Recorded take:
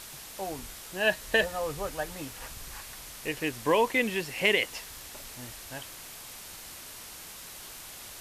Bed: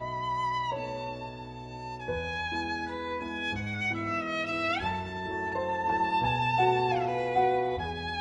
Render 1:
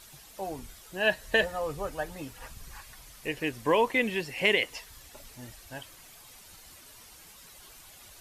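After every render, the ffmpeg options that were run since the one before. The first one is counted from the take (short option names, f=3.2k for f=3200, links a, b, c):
-af "afftdn=nr=10:nf=-45"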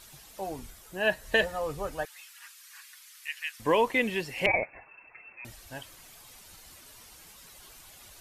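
-filter_complex "[0:a]asettb=1/sr,asplit=3[a][b][c];[a]atrim=end=0.704[d];[b]atrim=start=0.7:end=1.26,asetpts=PTS-STARTPTS,afade=t=in:d=0.004:c=qsin,afade=t=out:st=0.556:d=0.004:c=qsin,equalizer=f=3.9k:t=o:w=1.5:g=-4[e];[c]atrim=start=1.256[f];[d][e]acrossfade=d=0.004:c1=hsin:c2=qsin[g];[g][f]acrossfade=d=0.004:c1=qsin:c2=hsin,asettb=1/sr,asplit=3[h][i][j];[h]atrim=end=2.054[k];[i]atrim=start=2.05:end=3.6,asetpts=PTS-STARTPTS,afade=t=in:d=0.004:c=qsin,afade=t=out:st=1.546:d=0.004:c=qsin,highpass=f=1.4k:w=0.5412,highpass=f=1.4k:w=1.3066[l];[j]atrim=start=3.596[m];[k][l]acrossfade=d=0.004:c1=hsin:c2=qsin[n];[n][m]acrossfade=d=0.004:c1=qsin:c2=hsin,asettb=1/sr,asplit=3[o][p][q];[o]atrim=end=4.464[r];[p]atrim=start=4.46:end=5.45,asetpts=PTS-STARTPTS,afade=t=in:d=0.004:c=qsin,afade=t=out:st=0.986:d=0.004:c=qsin,lowpass=f=2.3k:t=q:w=0.5098,lowpass=f=2.3k:t=q:w=0.6013,lowpass=f=2.3k:t=q:w=0.9,lowpass=f=2.3k:t=q:w=2.563,afreqshift=-2700[s];[q]atrim=start=5.446[t];[r][s]acrossfade=d=0.004:c1=hsin:c2=qsin[u];[u][t]acrossfade=d=0.004:c1=qsin:c2=hsin"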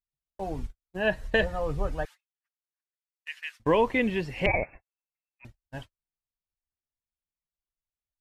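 -af "agate=range=-51dB:threshold=-42dB:ratio=16:detection=peak,aemphasis=mode=reproduction:type=bsi"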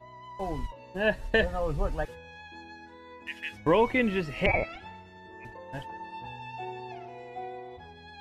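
-filter_complex "[1:a]volume=-14dB[a];[0:a][a]amix=inputs=2:normalize=0"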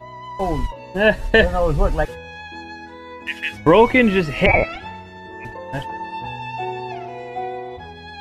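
-af "volume=11.5dB,alimiter=limit=-2dB:level=0:latency=1"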